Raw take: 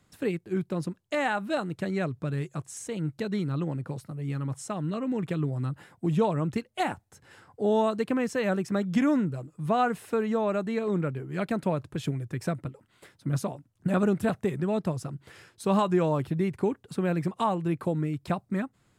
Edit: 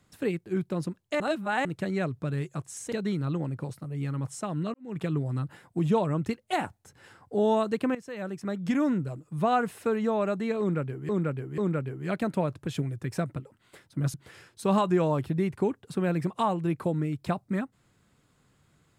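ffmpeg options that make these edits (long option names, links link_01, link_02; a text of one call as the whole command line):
ffmpeg -i in.wav -filter_complex "[0:a]asplit=9[link_01][link_02][link_03][link_04][link_05][link_06][link_07][link_08][link_09];[link_01]atrim=end=1.202[link_10];[link_02]atrim=start=1.198:end=1.652,asetpts=PTS-STARTPTS,areverse[link_11];[link_03]atrim=start=1.648:end=2.922[link_12];[link_04]atrim=start=3.188:end=5.01,asetpts=PTS-STARTPTS,afade=type=out:start_time=1.818:duration=0.004:curve=hsin[link_13];[link_05]atrim=start=5.01:end=8.22,asetpts=PTS-STARTPTS,afade=type=in:duration=0.25:curve=qua,afade=type=out:start_time=3.206:duration=0.004:curve=hsin:silence=0.16788[link_14];[link_06]atrim=start=8.22:end=11.362,asetpts=PTS-STARTPTS,afade=type=in:duration=1.12:silence=0.16788[link_15];[link_07]atrim=start=10.868:end=11.362[link_16];[link_08]atrim=start=10.868:end=13.432[link_17];[link_09]atrim=start=15.148[link_18];[link_10][link_11]acrossfade=duration=0.004:curve1=hsin:curve2=hsin[link_19];[link_19][link_12]acrossfade=duration=0.004:curve1=hsin:curve2=hsin[link_20];[link_13][link_14][link_15]concat=n=3:v=0:a=1[link_21];[link_20][link_21]acrossfade=duration=0.004:curve1=hsin:curve2=hsin[link_22];[link_22][link_16]acrossfade=duration=0.004:curve1=hsin:curve2=hsin[link_23];[link_23][link_17]acrossfade=duration=0.004:curve1=hsin:curve2=hsin[link_24];[link_24][link_18]acrossfade=duration=0.004:curve1=hsin:curve2=hsin" out.wav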